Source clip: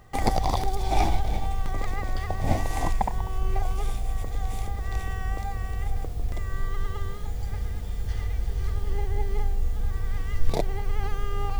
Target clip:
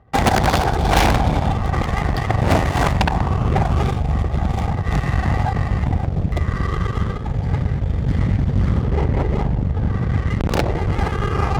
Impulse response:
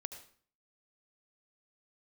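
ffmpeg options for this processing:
-filter_complex "[0:a]asettb=1/sr,asplit=3[s0][s1][s2];[s0]atrim=end=8.844[s3];[s1]atrim=start=8.84:end=10.77,asetpts=PTS-STARTPTS,afade=t=in:d=0.004:c=qsin,afade=t=out:st=1.926:d=0.004:c=qsin,highshelf=f=4800:g=-6[s4];[s2]atrim=start=10.766[s5];[s3][s4]acrossfade=d=0.004:c1=hsin:c2=qsin[s6];[s6][s5]acrossfade=d=0.004:c1=qsin:c2=hsin,asplit=2[s7][s8];[1:a]atrim=start_sample=2205,lowshelf=f=190:g=6[s9];[s8][s9]afir=irnorm=-1:irlink=0,volume=1.88[s10];[s7][s10]amix=inputs=2:normalize=0,adynamicsmooth=sensitivity=7:basefreq=1200,aeval=exprs='0.75*(cos(1*acos(clip(val(0)/0.75,-1,1)))-cos(1*PI/2))+0.075*(cos(3*acos(clip(val(0)/0.75,-1,1)))-cos(3*PI/2))+0.168*(cos(4*acos(clip(val(0)/0.75,-1,1)))-cos(4*PI/2))+0.237*(cos(8*acos(clip(val(0)/0.75,-1,1)))-cos(8*PI/2))':c=same,highpass=61,volume=0.708"

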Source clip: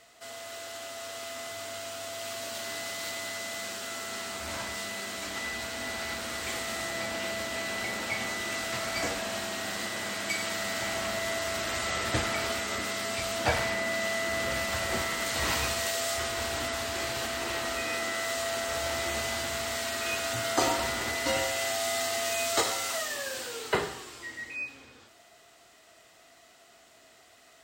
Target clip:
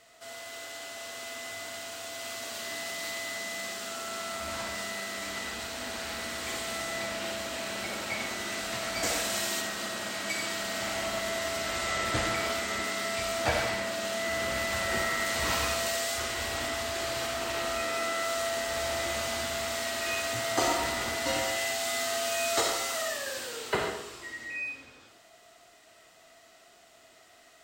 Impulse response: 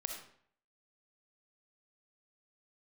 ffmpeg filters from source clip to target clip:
-filter_complex "[0:a]asettb=1/sr,asplit=3[s0][s1][s2];[s0]atrim=end=9.034[s3];[s1]atrim=start=9.03:end=9.61,asetpts=PTS-STARTPTS,afade=t=in:d=0.004:c=qsin,afade=t=out:st=0.576:d=0.004:c=qsin,highshelf=f=4000:g=10[s4];[s2]atrim=start=9.606[s5];[s3][s4]acrossfade=d=0.004:c1=hsin:c2=qsin[s6];[s6][s5]acrossfade=d=0.004:c1=qsin:c2=hsin[s7];[1:a]atrim=start_sample=2205[s8];[s7][s8]afir=irnorm=-1:irlink=0"

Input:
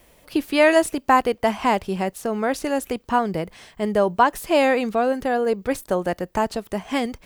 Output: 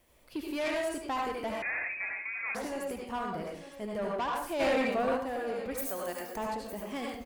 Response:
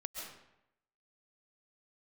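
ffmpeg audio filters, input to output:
-filter_complex "[0:a]asplit=3[s0][s1][s2];[s0]afade=t=out:st=5.77:d=0.02[s3];[s1]aemphasis=mode=production:type=riaa,afade=t=in:st=5.77:d=0.02,afade=t=out:st=6.35:d=0.02[s4];[s2]afade=t=in:st=6.35:d=0.02[s5];[s3][s4][s5]amix=inputs=3:normalize=0,aecho=1:1:909:0.178[s6];[1:a]atrim=start_sample=2205,asetrate=79380,aresample=44100[s7];[s6][s7]afir=irnorm=-1:irlink=0,asoftclip=type=tanh:threshold=0.0631,asettb=1/sr,asplit=3[s8][s9][s10];[s8]atrim=end=1.624[s11];[s9]atrim=start=1.62:end=2.55,asetpts=PTS-STARTPTS,afade=t=in:d=0.004:c=qsin,afade=t=out:st=0.926:d=0.004:c=qsin,lowpass=f=2300:t=q:w=0.5098,lowpass=f=2300:t=q:w=0.6013,lowpass=f=2300:t=q:w=0.9,lowpass=f=2300:t=q:w=2.563,afreqshift=-2700[s12];[s10]atrim=start=2.546[s13];[s11][s12]acrossfade=d=0.004:c1=hsin:c2=qsin[s14];[s14][s13]acrossfade=d=0.004:c1=qsin:c2=hsin,asplit=3[s15][s16][s17];[s15]afade=t=out:st=4.59:d=0.02[s18];[s16]acontrast=35,afade=t=in:st=4.59:d=0.02,afade=t=out:st=5.16:d=0.02[s19];[s17]afade=t=in:st=5.16:d=0.02[s20];[s18][s19][s20]amix=inputs=3:normalize=0,volume=0.631"

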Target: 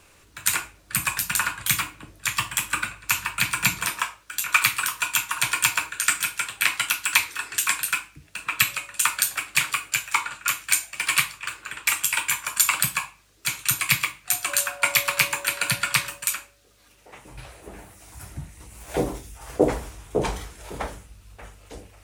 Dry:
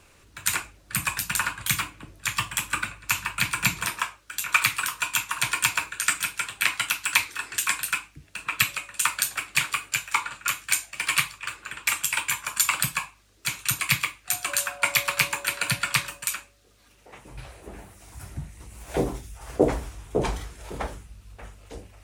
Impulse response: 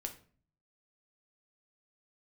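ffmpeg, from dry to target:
-filter_complex "[0:a]asplit=2[s0][s1];[1:a]atrim=start_sample=2205,lowshelf=f=200:g=-12,highshelf=f=8900:g=7.5[s2];[s1][s2]afir=irnorm=-1:irlink=0,volume=0.841[s3];[s0][s3]amix=inputs=2:normalize=0,volume=0.75"

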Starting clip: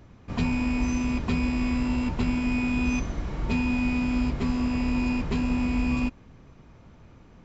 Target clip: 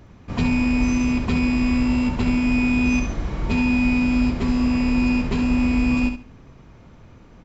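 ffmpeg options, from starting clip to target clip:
-af "aecho=1:1:69|138|207:0.398|0.0836|0.0176,volume=1.58"

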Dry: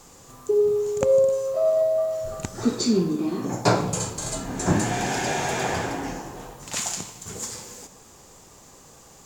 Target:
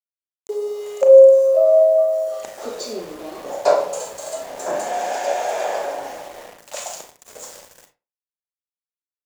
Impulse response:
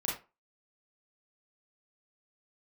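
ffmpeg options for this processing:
-filter_complex "[0:a]highpass=f=580:t=q:w=6,aeval=exprs='val(0)*gte(abs(val(0)),0.0237)':c=same,asplit=2[s0][s1];[1:a]atrim=start_sample=2205[s2];[s1][s2]afir=irnorm=-1:irlink=0,volume=0.447[s3];[s0][s3]amix=inputs=2:normalize=0,volume=0.422"

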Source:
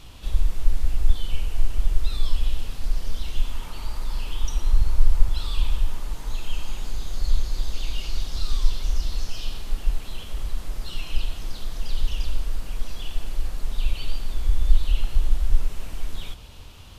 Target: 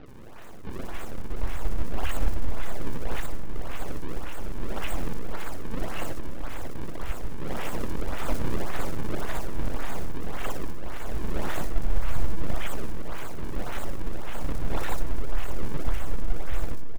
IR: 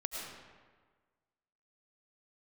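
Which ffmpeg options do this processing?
-filter_complex "[0:a]areverse,tiltshelf=f=1300:g=-10,acrusher=samples=38:mix=1:aa=0.000001:lfo=1:lforange=60.8:lforate=1.8,aeval=exprs='abs(val(0))':c=same,acrossover=split=4300[s0][s1];[s1]adelay=60[s2];[s0][s2]amix=inputs=2:normalize=0,asplit=2[s3][s4];[1:a]atrim=start_sample=2205,lowpass=2400[s5];[s4][s5]afir=irnorm=-1:irlink=0,volume=0.237[s6];[s3][s6]amix=inputs=2:normalize=0"

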